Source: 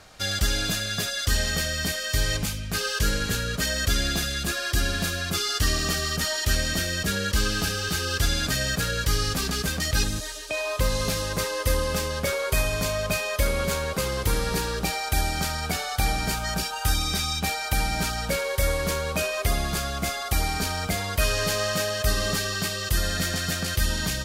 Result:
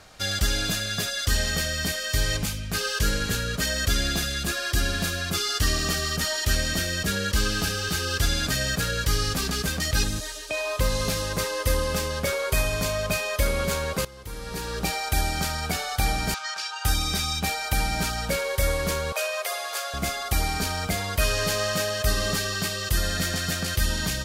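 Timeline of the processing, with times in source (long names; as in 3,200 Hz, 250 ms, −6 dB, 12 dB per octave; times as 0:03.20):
0:14.05–0:14.86: fade in quadratic, from −17.5 dB
0:16.34–0:16.85: Chebyshev band-pass filter 1,100–5,700 Hz
0:19.12–0:19.94: elliptic high-pass filter 500 Hz, stop band 70 dB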